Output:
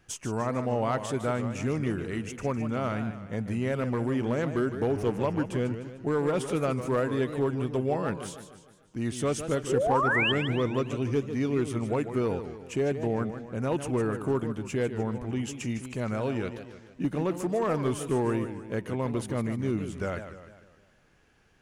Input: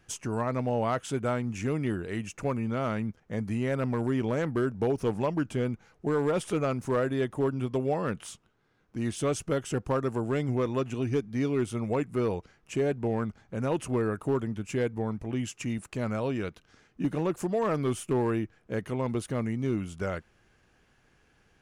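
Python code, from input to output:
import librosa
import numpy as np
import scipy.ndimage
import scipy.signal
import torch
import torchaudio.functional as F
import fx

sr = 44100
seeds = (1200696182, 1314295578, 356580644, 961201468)

y = fx.dmg_buzz(x, sr, base_hz=100.0, harmonics=30, level_db=-40.0, tilt_db=-7, odd_only=False, at=(4.88, 5.39), fade=0.02)
y = fx.spec_paint(y, sr, seeds[0], shape='rise', start_s=9.69, length_s=0.63, low_hz=360.0, high_hz=3300.0, level_db=-26.0)
y = fx.echo_warbled(y, sr, ms=151, feedback_pct=49, rate_hz=2.8, cents=197, wet_db=-10)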